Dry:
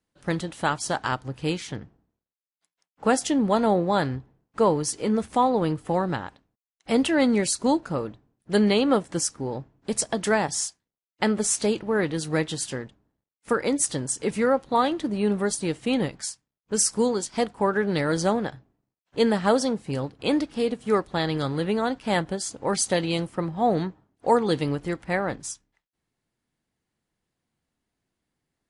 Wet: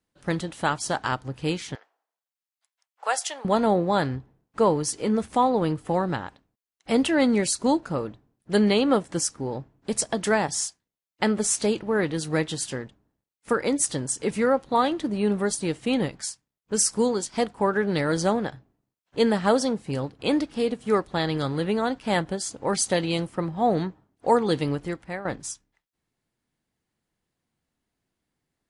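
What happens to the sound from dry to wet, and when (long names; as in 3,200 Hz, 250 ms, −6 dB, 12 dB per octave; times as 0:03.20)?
0:01.75–0:03.45: high-pass filter 650 Hz 24 dB per octave
0:24.77–0:25.25: fade out, to −12 dB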